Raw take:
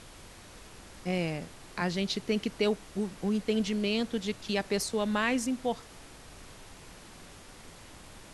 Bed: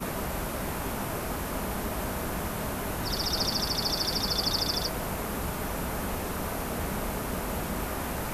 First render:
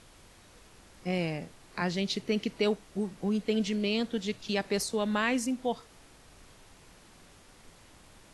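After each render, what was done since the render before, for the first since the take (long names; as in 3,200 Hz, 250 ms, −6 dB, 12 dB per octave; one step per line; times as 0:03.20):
noise reduction from a noise print 6 dB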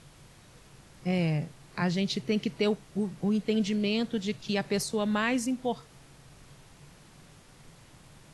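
parametric band 140 Hz +13.5 dB 0.49 octaves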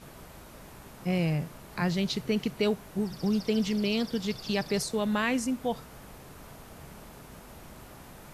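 mix in bed −17 dB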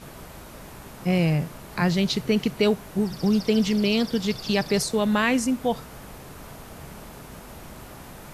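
level +6 dB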